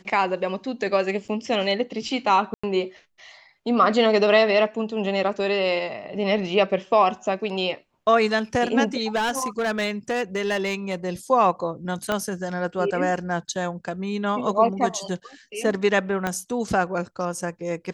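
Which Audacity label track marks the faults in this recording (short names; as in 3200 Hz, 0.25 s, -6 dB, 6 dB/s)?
1.280000	1.290000	gap 7.3 ms
2.540000	2.630000	gap 95 ms
9.150000	11.100000	clipped -20 dBFS
12.120000	12.120000	pop -10 dBFS
16.270000	16.270000	pop -11 dBFS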